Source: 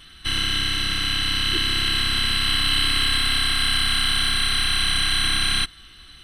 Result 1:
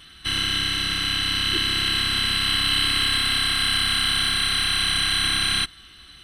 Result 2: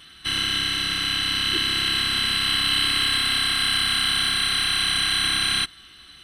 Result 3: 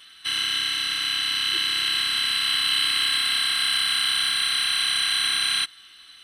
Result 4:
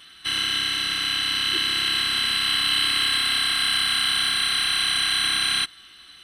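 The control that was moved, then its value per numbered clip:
high-pass, cutoff frequency: 55 Hz, 150 Hz, 1.3 kHz, 470 Hz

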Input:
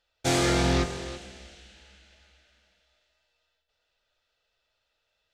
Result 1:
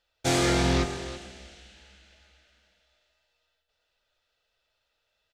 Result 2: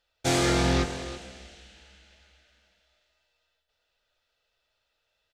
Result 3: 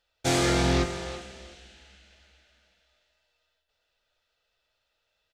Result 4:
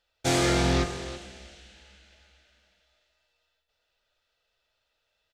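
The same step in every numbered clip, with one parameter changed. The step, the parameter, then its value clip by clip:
speakerphone echo, time: 120 ms, 200 ms, 370 ms, 80 ms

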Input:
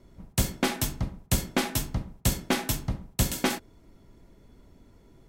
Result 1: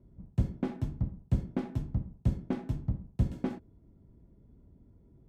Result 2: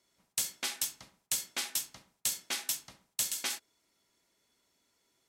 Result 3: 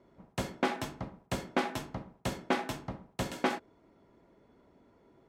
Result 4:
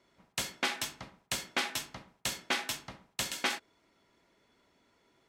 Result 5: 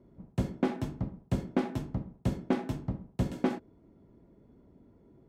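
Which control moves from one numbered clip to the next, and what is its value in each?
band-pass filter, frequency: 100 Hz, 7.5 kHz, 770 Hz, 2.5 kHz, 270 Hz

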